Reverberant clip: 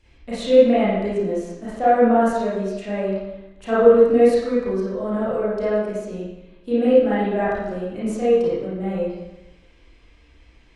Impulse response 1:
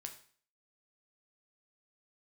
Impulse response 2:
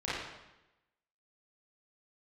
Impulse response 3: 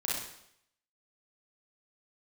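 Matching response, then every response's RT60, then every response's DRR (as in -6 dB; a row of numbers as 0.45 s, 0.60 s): 2; 0.45 s, 0.95 s, 0.70 s; 4.0 dB, -10.5 dB, -6.5 dB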